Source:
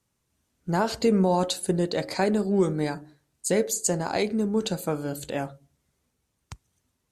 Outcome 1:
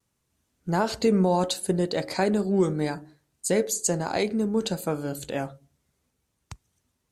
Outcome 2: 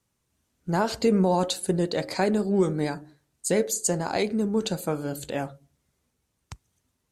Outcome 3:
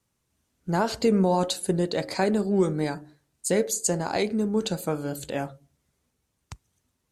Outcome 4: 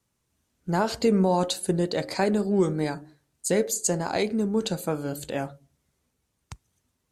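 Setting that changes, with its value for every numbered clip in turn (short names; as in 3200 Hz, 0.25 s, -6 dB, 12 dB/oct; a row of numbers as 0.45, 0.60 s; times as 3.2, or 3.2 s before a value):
vibrato, rate: 0.7, 13, 6.1, 3.3 Hz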